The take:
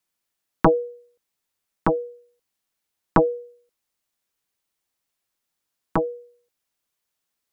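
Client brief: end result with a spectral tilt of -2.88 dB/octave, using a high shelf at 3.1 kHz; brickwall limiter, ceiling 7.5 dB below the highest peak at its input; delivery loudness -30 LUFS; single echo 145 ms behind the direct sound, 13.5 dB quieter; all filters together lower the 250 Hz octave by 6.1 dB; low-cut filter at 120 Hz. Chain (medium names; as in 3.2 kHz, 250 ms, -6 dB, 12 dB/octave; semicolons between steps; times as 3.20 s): high-pass 120 Hz; peaking EQ 250 Hz -9 dB; treble shelf 3.1 kHz +5 dB; peak limiter -13.5 dBFS; delay 145 ms -13.5 dB; trim -1 dB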